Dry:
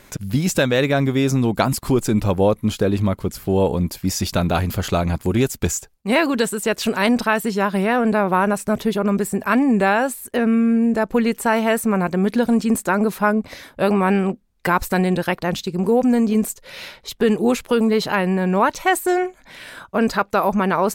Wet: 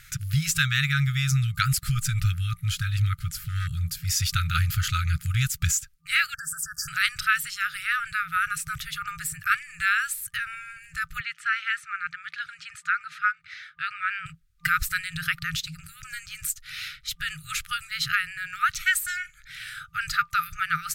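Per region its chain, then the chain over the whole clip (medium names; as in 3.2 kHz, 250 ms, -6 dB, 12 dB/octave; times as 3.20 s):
3.34–4.00 s: dynamic bell 2.3 kHz, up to -6 dB, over -47 dBFS, Q 1.9 + hum notches 50/100/150 Hz + hard clipper -13 dBFS
6.34–6.88 s: compression 4:1, threshold -23 dBFS + brick-wall FIR band-stop 1.8–4.6 kHz
11.20–14.26 s: band-pass filter 1.6 kHz, Q 0.65 + distance through air 53 m
whole clip: FFT band-reject 170–1200 Hz; peaking EQ 180 Hz -6.5 dB 0.36 oct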